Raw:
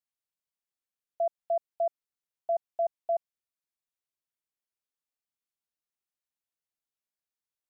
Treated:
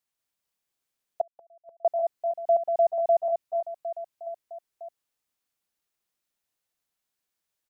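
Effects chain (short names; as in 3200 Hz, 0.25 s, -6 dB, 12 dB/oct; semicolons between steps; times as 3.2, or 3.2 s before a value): reverse bouncing-ball echo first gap 0.19 s, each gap 1.3×, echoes 5; 1.21–1.85 flipped gate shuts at -30 dBFS, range -35 dB; gain +7 dB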